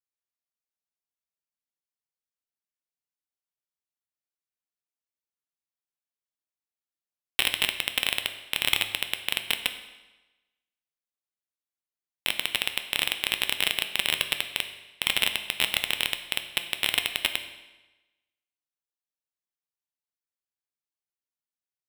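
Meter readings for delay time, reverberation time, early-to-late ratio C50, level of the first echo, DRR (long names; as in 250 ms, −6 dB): no echo audible, 1.1 s, 10.0 dB, no echo audible, 7.0 dB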